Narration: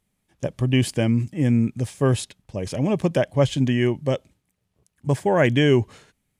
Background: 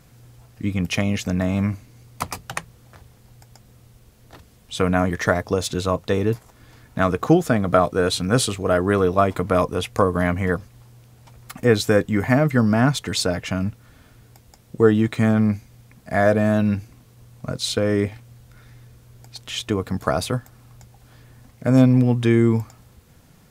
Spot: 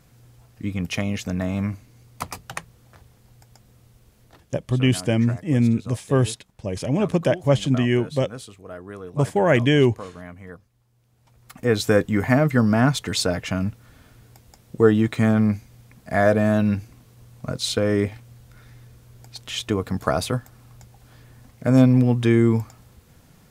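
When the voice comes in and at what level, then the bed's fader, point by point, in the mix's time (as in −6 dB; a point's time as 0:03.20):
4.10 s, +0.5 dB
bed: 0:04.21 −3.5 dB
0:04.84 −18.5 dB
0:10.85 −18.5 dB
0:11.88 −0.5 dB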